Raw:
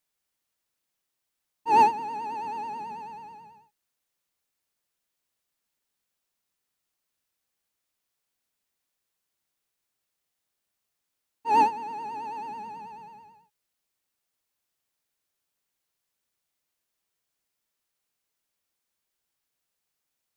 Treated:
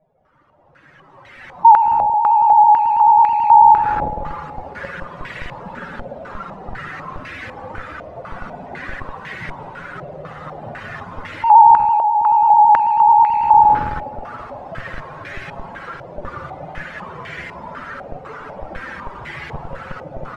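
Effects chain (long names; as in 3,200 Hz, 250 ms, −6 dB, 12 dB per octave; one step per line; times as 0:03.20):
expanding power law on the bin magnitudes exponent 3.2
camcorder AGC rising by 16 dB per second
parametric band 140 Hz +11 dB 1.5 octaves
on a send: single-tap delay 168 ms −5.5 dB
on the sum: downward compressor 16 to 1, threshold −32 dBFS, peak gain reduction 18 dB
parametric band 550 Hz +7.5 dB 0.23 octaves
spring reverb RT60 1.6 s, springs 52 ms, chirp 80 ms, DRR 5 dB
in parallel at −9 dB: comparator with hysteresis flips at −40 dBFS
on the sum: boost into a limiter +34 dB
low-pass on a step sequencer 4 Hz 670–2,000 Hz
level −12.5 dB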